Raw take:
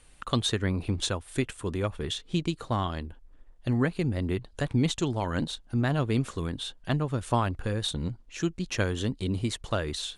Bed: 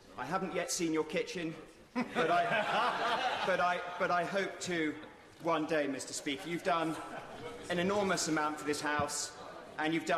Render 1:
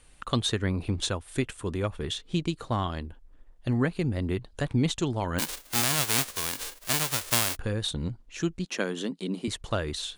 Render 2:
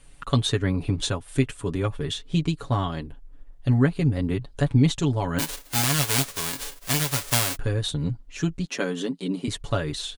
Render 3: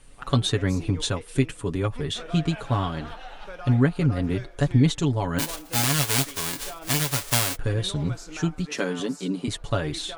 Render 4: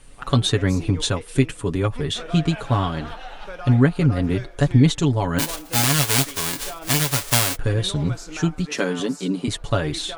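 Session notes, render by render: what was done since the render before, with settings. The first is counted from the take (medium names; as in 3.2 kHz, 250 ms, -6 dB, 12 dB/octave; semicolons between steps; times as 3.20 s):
5.38–7.55 s: formants flattened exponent 0.1; 8.65–9.48 s: elliptic high-pass 170 Hz
bass shelf 280 Hz +5 dB; comb 7.1 ms, depth 71%
add bed -9 dB
trim +4 dB; peak limiter -3 dBFS, peak gain reduction 1 dB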